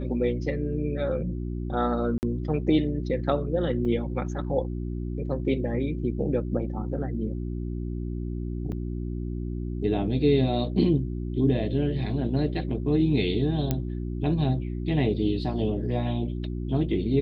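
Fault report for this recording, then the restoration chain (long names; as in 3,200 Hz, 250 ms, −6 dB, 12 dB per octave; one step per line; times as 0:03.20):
mains hum 60 Hz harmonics 6 −31 dBFS
0:02.18–0:02.23: drop-out 49 ms
0:03.85: drop-out 4.6 ms
0:08.72–0:08.73: drop-out 5.1 ms
0:13.71: click −12 dBFS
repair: click removal
hum removal 60 Hz, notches 6
repair the gap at 0:02.18, 49 ms
repair the gap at 0:03.85, 4.6 ms
repair the gap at 0:08.72, 5.1 ms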